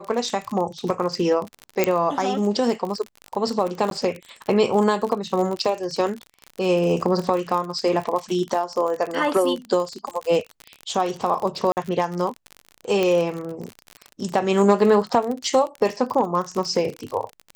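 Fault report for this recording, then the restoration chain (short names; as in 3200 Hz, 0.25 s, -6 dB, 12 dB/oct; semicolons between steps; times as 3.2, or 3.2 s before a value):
crackle 44/s -26 dBFS
1.84 pop -5 dBFS
3.9–3.91 gap 12 ms
11.72–11.77 gap 49 ms
13.03 pop -9 dBFS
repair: de-click; interpolate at 3.9, 12 ms; interpolate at 11.72, 49 ms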